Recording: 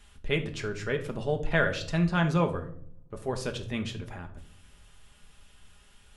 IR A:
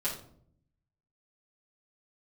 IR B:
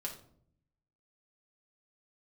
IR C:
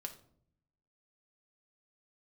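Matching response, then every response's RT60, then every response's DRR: C; 0.60, 0.60, 0.60 seconds; −9.5, −1.5, 4.0 decibels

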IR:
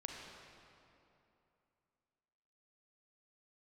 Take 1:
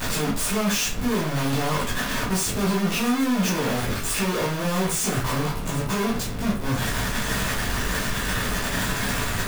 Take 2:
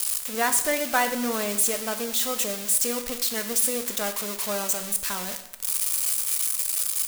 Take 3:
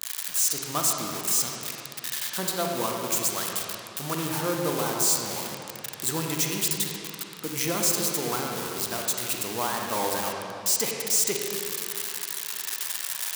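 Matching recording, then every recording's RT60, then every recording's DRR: 3; 0.45, 0.90, 2.9 seconds; −8.5, 7.0, 0.0 decibels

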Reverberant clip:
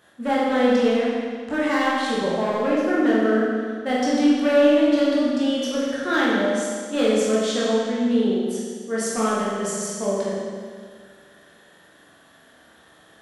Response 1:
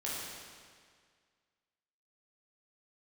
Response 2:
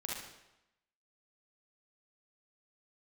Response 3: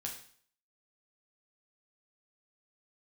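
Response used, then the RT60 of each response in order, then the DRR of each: 1; 1.9, 0.90, 0.55 seconds; −7.5, −4.0, −1.0 decibels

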